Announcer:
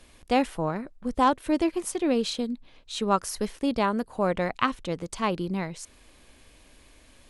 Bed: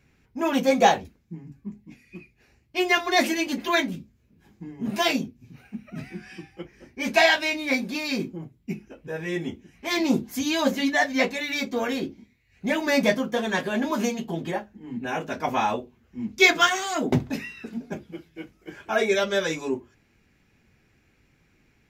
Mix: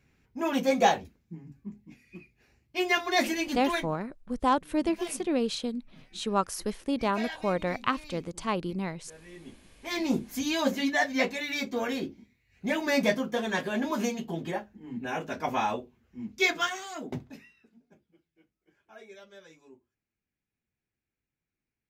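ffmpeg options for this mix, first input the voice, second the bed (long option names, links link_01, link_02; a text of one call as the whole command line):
ffmpeg -i stem1.wav -i stem2.wav -filter_complex "[0:a]adelay=3250,volume=-3dB[link_01];[1:a]volume=11dB,afade=type=out:start_time=3.65:duration=0.23:silence=0.177828,afade=type=in:start_time=9.37:duration=0.88:silence=0.16788,afade=type=out:start_time=15.56:duration=2.14:silence=0.0707946[link_02];[link_01][link_02]amix=inputs=2:normalize=0" out.wav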